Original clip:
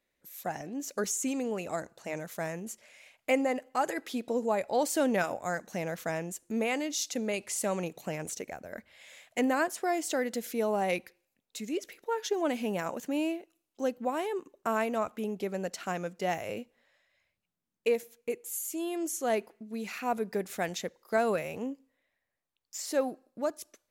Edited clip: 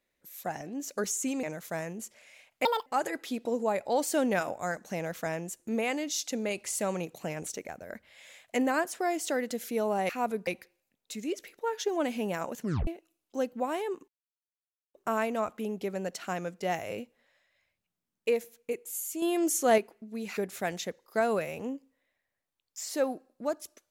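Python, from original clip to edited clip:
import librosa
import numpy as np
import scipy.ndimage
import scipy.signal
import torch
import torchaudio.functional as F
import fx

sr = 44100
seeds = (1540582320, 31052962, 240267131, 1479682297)

y = fx.edit(x, sr, fx.cut(start_s=1.43, length_s=0.67),
    fx.speed_span(start_s=3.32, length_s=0.37, speed=1.75),
    fx.tape_stop(start_s=13.05, length_s=0.27),
    fx.insert_silence(at_s=14.53, length_s=0.86),
    fx.clip_gain(start_s=18.81, length_s=0.56, db=6.0),
    fx.move(start_s=19.96, length_s=0.38, to_s=10.92), tone=tone)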